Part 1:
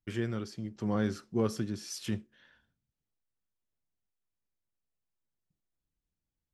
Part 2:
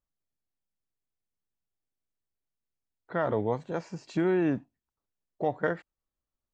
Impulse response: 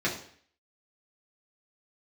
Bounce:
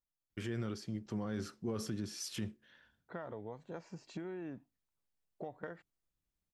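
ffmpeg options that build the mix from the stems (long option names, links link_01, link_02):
-filter_complex "[0:a]alimiter=level_in=4dB:limit=-24dB:level=0:latency=1:release=36,volume=-4dB,adelay=300,volume=-1.5dB[link_01];[1:a]acompressor=threshold=-32dB:ratio=12,volume=-8dB[link_02];[link_01][link_02]amix=inputs=2:normalize=0"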